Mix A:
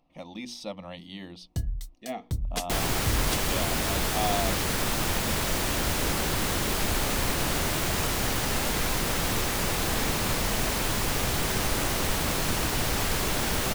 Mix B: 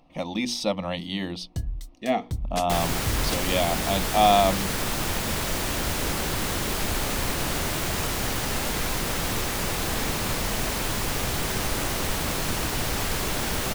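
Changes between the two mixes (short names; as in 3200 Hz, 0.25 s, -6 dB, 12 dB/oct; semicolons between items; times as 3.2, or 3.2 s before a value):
speech +11.0 dB; first sound: add high shelf 11000 Hz -5.5 dB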